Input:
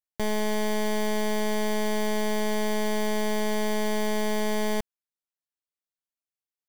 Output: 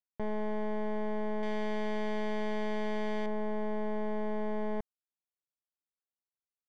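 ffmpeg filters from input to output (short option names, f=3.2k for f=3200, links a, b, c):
-af "asetnsamples=n=441:p=0,asendcmd='1.43 lowpass f 2800;3.26 lowpass f 1300',lowpass=1.4k,volume=-6.5dB"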